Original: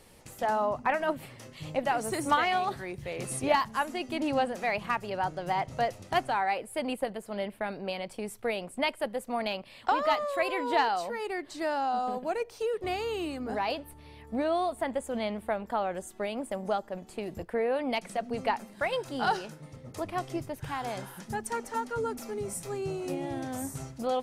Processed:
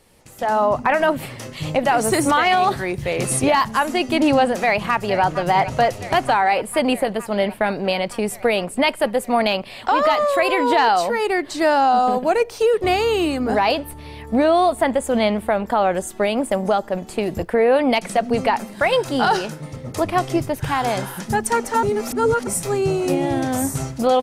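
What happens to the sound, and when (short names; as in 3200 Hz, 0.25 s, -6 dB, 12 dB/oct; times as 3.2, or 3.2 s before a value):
4.61–5.23 echo throw 0.46 s, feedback 80%, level -15 dB
21.83–22.47 reverse
whole clip: limiter -22 dBFS; AGC gain up to 14 dB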